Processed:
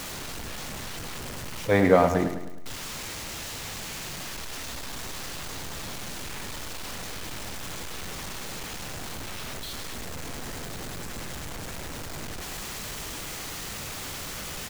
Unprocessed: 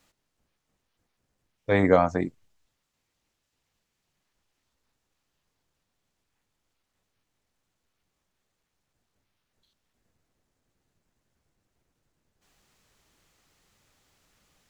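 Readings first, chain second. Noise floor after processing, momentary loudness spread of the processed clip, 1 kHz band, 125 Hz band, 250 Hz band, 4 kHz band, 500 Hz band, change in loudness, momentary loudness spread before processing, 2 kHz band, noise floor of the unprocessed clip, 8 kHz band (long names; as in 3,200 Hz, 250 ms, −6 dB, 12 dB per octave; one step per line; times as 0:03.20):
−37 dBFS, 9 LU, +3.0 dB, +3.5 dB, +2.5 dB, +19.5 dB, +2.0 dB, −8.5 dB, 15 LU, +5.5 dB, −80 dBFS, can't be measured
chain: converter with a step at zero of −31 dBFS
repeating echo 104 ms, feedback 49%, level −9 dB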